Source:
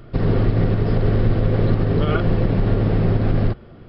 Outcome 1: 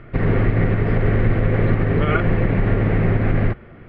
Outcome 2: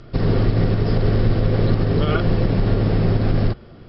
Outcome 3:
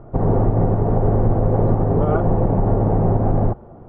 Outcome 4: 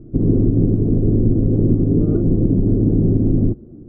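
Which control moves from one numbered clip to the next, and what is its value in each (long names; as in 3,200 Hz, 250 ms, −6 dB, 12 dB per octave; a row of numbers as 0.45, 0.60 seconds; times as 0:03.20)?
low-pass with resonance, frequency: 2,100, 5,500, 840, 300 Hertz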